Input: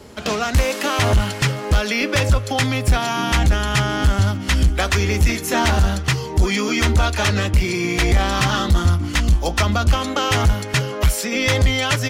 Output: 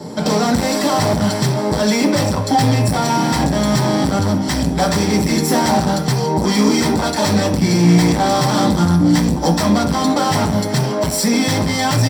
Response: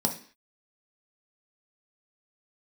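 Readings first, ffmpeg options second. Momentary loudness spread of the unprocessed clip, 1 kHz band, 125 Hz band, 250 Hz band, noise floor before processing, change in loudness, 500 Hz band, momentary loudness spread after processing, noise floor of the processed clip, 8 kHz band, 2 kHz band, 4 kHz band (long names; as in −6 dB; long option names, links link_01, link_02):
3 LU, +5.0 dB, +1.0 dB, +9.5 dB, −29 dBFS, +3.0 dB, +5.0 dB, 4 LU, −21 dBFS, +4.0 dB, −3.5 dB, +1.0 dB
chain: -filter_complex "[0:a]aecho=1:1:6.6:0.54,volume=23dB,asoftclip=hard,volume=-23dB[link_01];[1:a]atrim=start_sample=2205[link_02];[link_01][link_02]afir=irnorm=-1:irlink=0,volume=-1dB"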